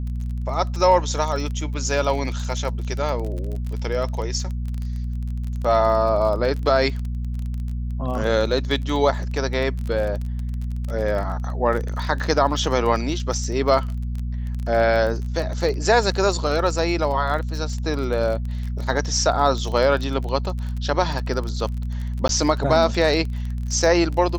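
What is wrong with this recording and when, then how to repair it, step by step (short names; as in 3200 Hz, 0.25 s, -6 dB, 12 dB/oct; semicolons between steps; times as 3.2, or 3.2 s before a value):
crackle 24/s -27 dBFS
hum 60 Hz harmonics 4 -26 dBFS
22.28–22.29 gap 12 ms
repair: de-click; de-hum 60 Hz, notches 4; interpolate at 22.28, 12 ms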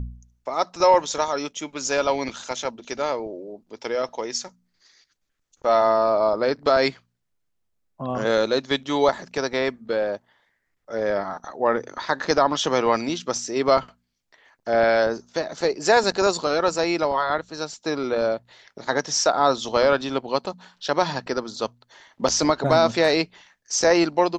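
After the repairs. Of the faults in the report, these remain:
none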